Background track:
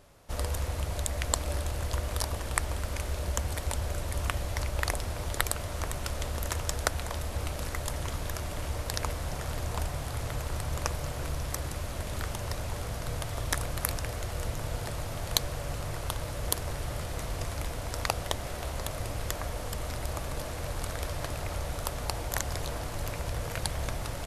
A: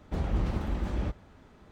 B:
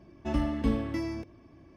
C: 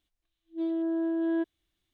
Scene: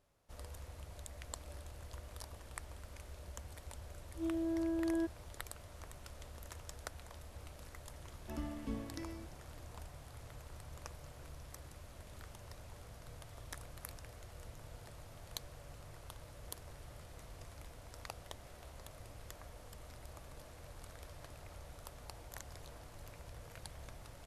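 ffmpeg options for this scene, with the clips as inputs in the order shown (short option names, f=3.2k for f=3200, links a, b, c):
-filter_complex "[0:a]volume=-18dB[a];[3:a]atrim=end=1.93,asetpts=PTS-STARTPTS,volume=-7dB,afade=t=in:d=0.004:c=hsin,afade=t=out:st=1.926:d=0.004:c=hsin,adelay=3630[b];[2:a]atrim=end=1.76,asetpts=PTS-STARTPTS,volume=-14dB,afade=t=in:d=0.004:c=hsin,afade=t=out:st=1.756:d=0.004:c=hsin,adelay=8030[c];[a][b][c]amix=inputs=3:normalize=0"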